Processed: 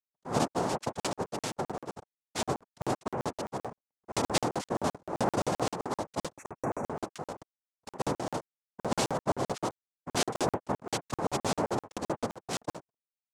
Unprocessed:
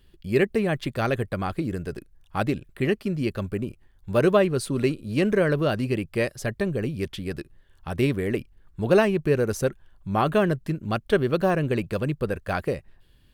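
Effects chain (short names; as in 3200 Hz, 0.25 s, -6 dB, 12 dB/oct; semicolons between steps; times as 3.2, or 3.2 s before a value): backlash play -36 dBFS; comb 0.9 ms, depth 70%; noise vocoder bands 2; spectral gain 6.38–6.88, 2700–5600 Hz -22 dB; crackling interface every 0.13 s, samples 2048, zero, from 1; gain -7.5 dB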